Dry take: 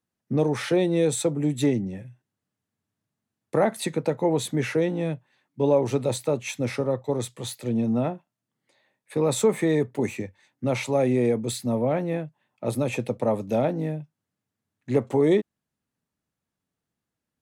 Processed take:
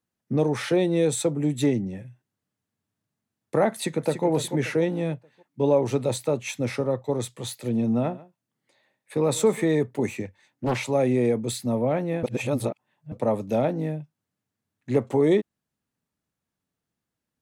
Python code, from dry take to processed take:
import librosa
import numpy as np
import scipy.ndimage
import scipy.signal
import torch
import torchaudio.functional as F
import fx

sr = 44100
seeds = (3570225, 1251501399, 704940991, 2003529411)

y = fx.echo_throw(x, sr, start_s=3.68, length_s=0.58, ms=290, feedback_pct=40, wet_db=-9.0)
y = fx.echo_single(y, sr, ms=140, db=-20.0, at=(7.5, 9.66))
y = fx.doppler_dist(y, sr, depth_ms=0.73, at=(10.25, 10.78))
y = fx.edit(y, sr, fx.reverse_span(start_s=12.23, length_s=0.89), tone=tone)